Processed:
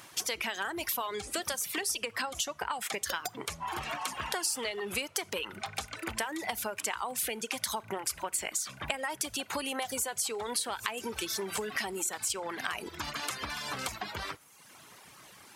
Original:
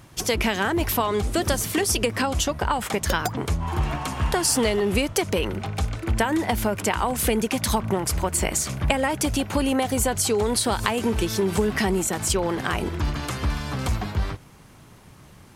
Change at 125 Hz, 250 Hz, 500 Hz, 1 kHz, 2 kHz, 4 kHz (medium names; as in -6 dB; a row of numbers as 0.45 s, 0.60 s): -24.0 dB, -18.0 dB, -14.0 dB, -9.5 dB, -7.0 dB, -6.5 dB